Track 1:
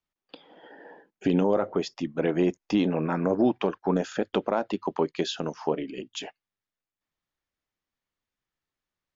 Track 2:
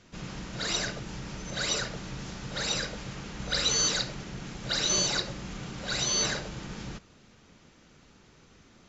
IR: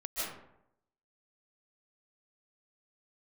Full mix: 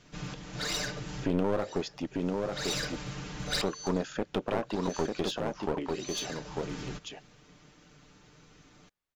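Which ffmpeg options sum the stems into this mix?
-filter_complex "[0:a]volume=0.668,asplit=3[s0][s1][s2];[s0]atrim=end=2.07,asetpts=PTS-STARTPTS,afade=t=out:st=2.066:d=0.004:c=hsin[s3];[s1]atrim=start=2.07:end=3.6,asetpts=PTS-STARTPTS,volume=0[s4];[s2]atrim=start=3.6,asetpts=PTS-STARTPTS,afade=t=in:d=0.004:c=hsin[s5];[s3][s4][s5]concat=n=3:v=0:a=1,asplit=3[s6][s7][s8];[s7]volume=0.631[s9];[1:a]aecho=1:1:6.7:0.61,volume=0.841[s10];[s8]apad=whole_len=392215[s11];[s10][s11]sidechaincompress=threshold=0.00501:ratio=12:attack=7.7:release=529[s12];[s9]aecho=0:1:896:1[s13];[s6][s12][s13]amix=inputs=3:normalize=0,aeval=exprs='clip(val(0),-1,0.0282)':c=same"

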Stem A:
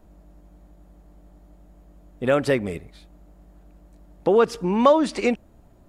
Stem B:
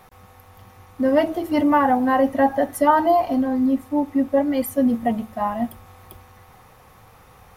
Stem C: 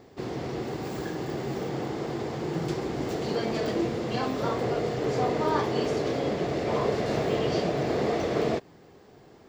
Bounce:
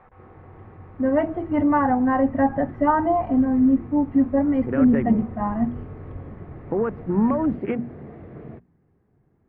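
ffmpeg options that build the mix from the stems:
-filter_complex "[0:a]highpass=210,afwtdn=0.0398,alimiter=limit=0.2:level=0:latency=1:release=167,adelay=2450,volume=0.944[s0];[1:a]volume=0.794[s1];[2:a]volume=0.158[s2];[s0][s1][s2]amix=inputs=3:normalize=0,lowpass=f=2000:w=0.5412,lowpass=f=2000:w=1.3066,bandreject=f=60:t=h:w=6,bandreject=f=120:t=h:w=6,bandreject=f=180:t=h:w=6,bandreject=f=240:t=h:w=6,asubboost=boost=5:cutoff=220"

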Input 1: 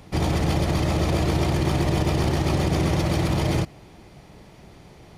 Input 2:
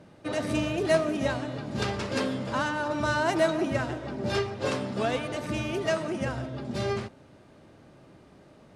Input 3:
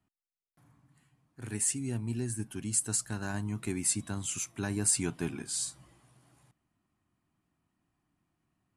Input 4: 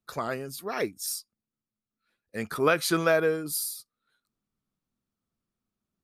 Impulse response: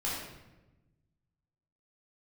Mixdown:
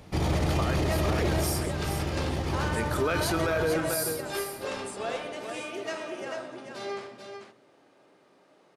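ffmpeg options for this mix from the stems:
-filter_complex "[0:a]volume=0.631,asplit=2[s0][s1];[s1]volume=0.141[s2];[1:a]highpass=380,volume=0.422,asplit=3[s3][s4][s5];[s4]volume=0.447[s6];[s5]volume=0.668[s7];[2:a]volume=0.133,asplit=2[s8][s9];[3:a]adelay=400,volume=0.944,asplit=3[s10][s11][s12];[s11]volume=0.188[s13];[s12]volume=0.355[s14];[s9]apad=whole_len=228130[s15];[s0][s15]sidechaincompress=threshold=0.00178:ratio=8:attack=11:release=586[s16];[4:a]atrim=start_sample=2205[s17];[s2][s6][s13]amix=inputs=3:normalize=0[s18];[s18][s17]afir=irnorm=-1:irlink=0[s19];[s7][s14]amix=inputs=2:normalize=0,aecho=0:1:440:1[s20];[s16][s3][s8][s10][s19][s20]amix=inputs=6:normalize=0,alimiter=limit=0.126:level=0:latency=1:release=18"

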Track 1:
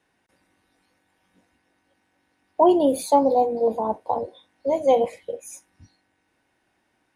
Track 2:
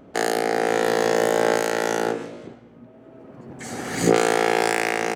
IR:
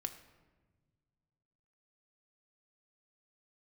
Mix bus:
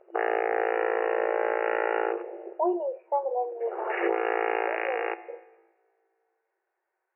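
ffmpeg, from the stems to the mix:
-filter_complex "[0:a]lowpass=f=1900:w=0.5412,lowpass=f=1900:w=1.3066,volume=0.316,asplit=3[s0][s1][s2];[s1]volume=0.106[s3];[1:a]alimiter=limit=0.282:level=0:latency=1:release=25,afwtdn=0.0251,volume=1.12,asplit=2[s4][s5];[s5]volume=0.596[s6];[s2]apad=whole_len=227132[s7];[s4][s7]sidechaincompress=threshold=0.0282:ratio=16:attack=7.8:release=1330[s8];[2:a]atrim=start_sample=2205[s9];[s3][s6]amix=inputs=2:normalize=0[s10];[s10][s9]afir=irnorm=-1:irlink=0[s11];[s0][s8][s11]amix=inputs=3:normalize=0,afftfilt=real='re*between(b*sr/4096,340,2900)':imag='im*between(b*sr/4096,340,2900)':win_size=4096:overlap=0.75,alimiter=limit=0.168:level=0:latency=1:release=482"

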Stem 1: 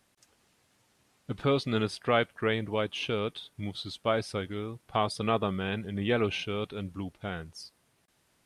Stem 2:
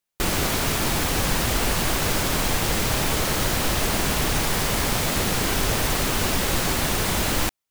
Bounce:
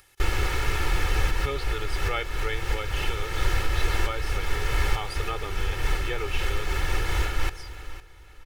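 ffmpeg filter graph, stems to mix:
-filter_complex "[0:a]volume=1.06,asplit=2[s0][s1];[1:a]aemphasis=mode=reproduction:type=75fm,bandreject=f=830:w=12,volume=1.12,asplit=2[s2][s3];[s3]volume=0.168[s4];[s1]apad=whole_len=339772[s5];[s2][s5]sidechaincompress=threshold=0.0316:ratio=8:attack=6.9:release=311[s6];[s4]aecho=0:1:507|1014|1521|2028:1|0.3|0.09|0.027[s7];[s0][s6][s7]amix=inputs=3:normalize=0,aecho=1:1:2.3:0.85,acompressor=mode=upward:threshold=0.00794:ratio=2.5,equalizer=f=125:t=o:w=1:g=-8,equalizer=f=250:t=o:w=1:g=-10,equalizer=f=500:t=o:w=1:g=-8,equalizer=f=1000:t=o:w=1:g=-6,equalizer=f=4000:t=o:w=1:g=-5,equalizer=f=8000:t=o:w=1:g=-5"

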